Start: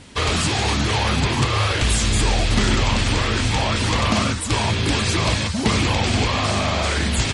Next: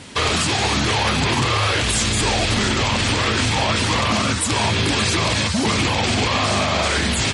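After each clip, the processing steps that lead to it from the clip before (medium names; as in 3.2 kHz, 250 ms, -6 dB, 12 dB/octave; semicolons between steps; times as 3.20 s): high-pass 77 Hz; bass shelf 340 Hz -3 dB; peak limiter -16.5 dBFS, peak gain reduction 8.5 dB; trim +6.5 dB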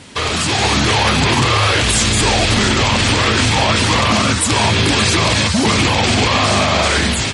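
level rider gain up to 5.5 dB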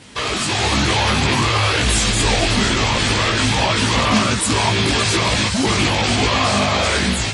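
chorus voices 6, 1 Hz, delay 18 ms, depth 3 ms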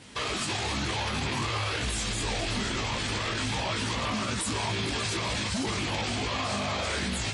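peak limiter -14.5 dBFS, peak gain reduction 10.5 dB; trim -7 dB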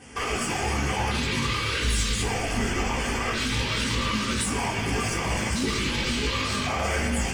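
overload inside the chain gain 25 dB; LFO notch square 0.45 Hz 740–3900 Hz; reverberation RT60 0.95 s, pre-delay 3 ms, DRR -4 dB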